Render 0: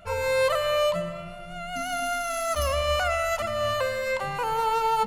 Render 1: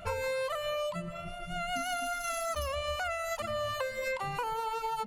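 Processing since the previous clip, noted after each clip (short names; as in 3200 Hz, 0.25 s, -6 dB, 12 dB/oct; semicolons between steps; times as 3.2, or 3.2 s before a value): reverb removal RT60 1.3 s; compressor 10:1, threshold -34 dBFS, peak gain reduction 13.5 dB; gain +3.5 dB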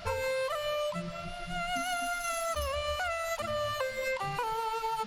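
band noise 750–5200 Hz -54 dBFS; gain +1 dB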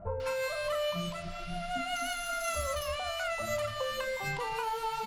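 doubler 35 ms -11.5 dB; bands offset in time lows, highs 0.2 s, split 970 Hz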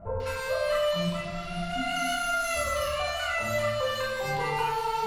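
reverb RT60 1.1 s, pre-delay 17 ms, DRR -4 dB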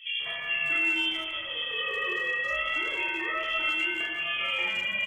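inverted band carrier 3300 Hz; speakerphone echo 0.15 s, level -7 dB; gain -1.5 dB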